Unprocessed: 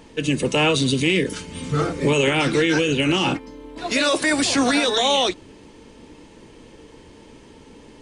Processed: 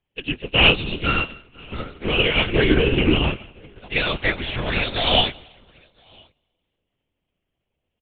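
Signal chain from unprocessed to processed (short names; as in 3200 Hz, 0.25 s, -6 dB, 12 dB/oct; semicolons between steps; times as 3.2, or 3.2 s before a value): 1.05–1.61 sample sorter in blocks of 32 samples; 2.49–3.29 tilt -3 dB/oct; in parallel at -6 dB: soft clip -21.5 dBFS, distortion -8 dB; on the sum: synth low-pass 3000 Hz, resonance Q 3; resonator 81 Hz, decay 0.17 s, harmonics all, mix 40%; echo 1.009 s -13 dB; on a send at -9.5 dB: reverb RT60 2.3 s, pre-delay 0.12 s; on the sum: LPC vocoder at 8 kHz whisper; upward expander 2.5:1, over -37 dBFS; gain +1.5 dB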